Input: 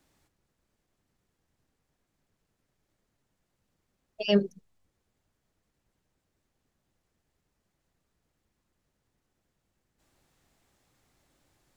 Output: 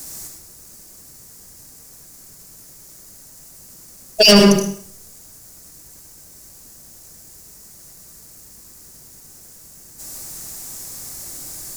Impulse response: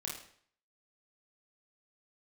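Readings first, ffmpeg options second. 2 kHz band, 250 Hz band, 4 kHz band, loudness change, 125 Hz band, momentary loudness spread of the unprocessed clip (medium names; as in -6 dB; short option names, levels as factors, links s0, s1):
+19.0 dB, +15.0 dB, +22.0 dB, +10.5 dB, +15.5 dB, 12 LU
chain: -filter_complex "[0:a]aexciter=amount=8:drive=5:freq=4800,asoftclip=type=tanh:threshold=0.0447,asplit=2[s0][s1];[1:a]atrim=start_sample=2205,adelay=73[s2];[s1][s2]afir=irnorm=-1:irlink=0,volume=0.708[s3];[s0][s3]amix=inputs=2:normalize=0,alimiter=level_in=16.8:limit=0.891:release=50:level=0:latency=1,volume=0.891"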